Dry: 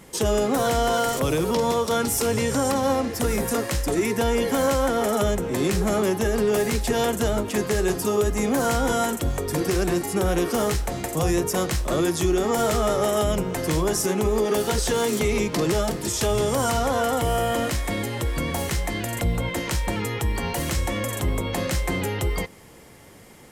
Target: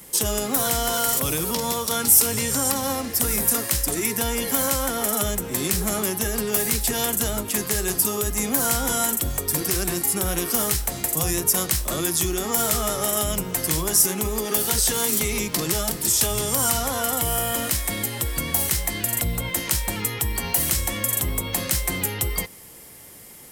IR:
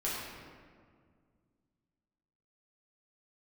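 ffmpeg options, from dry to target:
-filter_complex "[0:a]aemphasis=mode=production:type=75fm,acrossover=split=370|600|7700[a][b][c][d];[b]acompressor=threshold=-43dB:ratio=6[e];[a][e][c][d]amix=inputs=4:normalize=0,equalizer=f=6.7k:t=o:w=0.42:g=-2.5,volume=-2dB"

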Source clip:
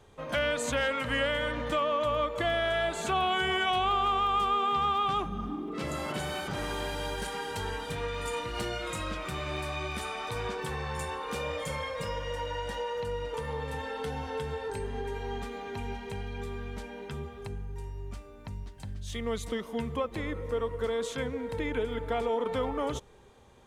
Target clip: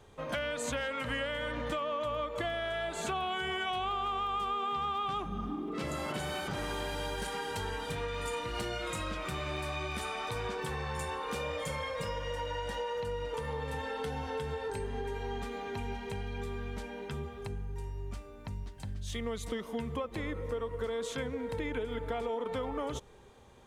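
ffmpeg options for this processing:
-af "acompressor=threshold=-32dB:ratio=4"

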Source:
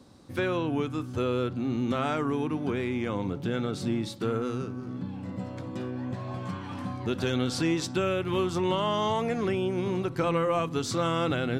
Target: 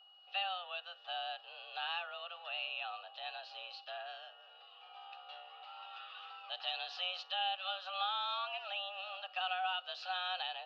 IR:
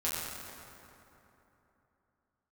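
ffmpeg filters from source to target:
-filter_complex "[0:a]acrossover=split=680|1800[a][b][c];[c]dynaudnorm=f=110:g=5:m=8.5dB[d];[a][b][d]amix=inputs=3:normalize=0,aderivative,highpass=f=330:t=q:w=0.5412,highpass=f=330:t=q:w=1.307,lowpass=f=3.6k:t=q:w=0.5176,lowpass=f=3.6k:t=q:w=0.7071,lowpass=f=3.6k:t=q:w=1.932,afreqshift=170,asplit=3[e][f][g];[e]bandpass=f=730:t=q:w=8,volume=0dB[h];[f]bandpass=f=1.09k:t=q:w=8,volume=-6dB[i];[g]bandpass=f=2.44k:t=q:w=8,volume=-9dB[j];[h][i][j]amix=inputs=3:normalize=0,asetrate=48000,aresample=44100,aeval=exprs='val(0)+0.000178*sin(2*PI*2900*n/s)':c=same,volume=15.5dB"

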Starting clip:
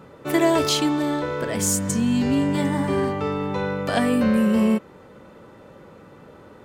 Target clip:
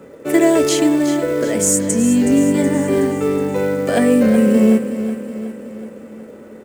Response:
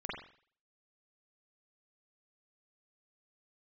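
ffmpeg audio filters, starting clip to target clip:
-filter_complex "[0:a]equalizer=f=125:t=o:w=1:g=-4,equalizer=f=250:t=o:w=1:g=7,equalizer=f=500:t=o:w=1:g=10,equalizer=f=1k:t=o:w=1:g=-5,equalizer=f=2k:t=o:w=1:g=6,equalizer=f=4k:t=o:w=1:g=-5,equalizer=f=8k:t=o:w=1:g=10,acrossover=split=260|4400[a][b][c];[b]acrusher=bits=6:mode=log:mix=0:aa=0.000001[d];[a][d][c]amix=inputs=3:normalize=0,aecho=1:1:371|742|1113|1484|1855|2226:0.282|0.152|0.0822|0.0444|0.024|0.0129,volume=-1dB"

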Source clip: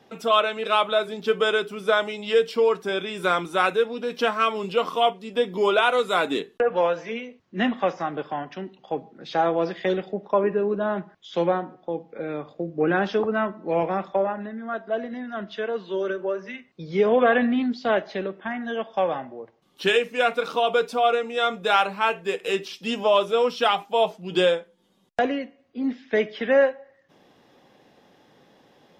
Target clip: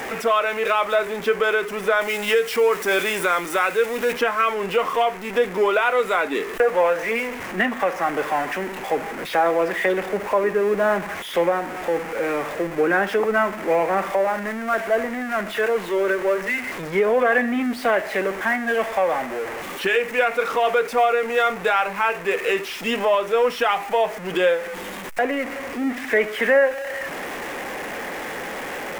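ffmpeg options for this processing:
-filter_complex "[0:a]aeval=exprs='val(0)+0.5*0.0355*sgn(val(0))':c=same,asettb=1/sr,asplit=3[a][b][c];[a]atrim=end=2.014[d];[b]atrim=start=2.01:end=4.13,asetpts=PTS-STARTPTS,afade=t=in:d=0.004:c=qsin,afade=t=out:st=2.116:d=0.004:c=qsin,highshelf=f=4.1k:g=9.5[e];[c]atrim=start=4.126[f];[d][e]acrossfade=d=0.004:c1=hsin:c2=qsin[g];[g][f]acrossfade=d=0.004:c1=qsin:c2=hsin,alimiter=limit=-14.5dB:level=0:latency=1:release=290,equalizer=f=125:t=o:w=1:g=-8,equalizer=f=500:t=o:w=1:g=4,equalizer=f=1k:t=o:w=1:g=3,equalizer=f=2k:t=o:w=1:g=11,equalizer=f=4k:t=o:w=1:g=-7"

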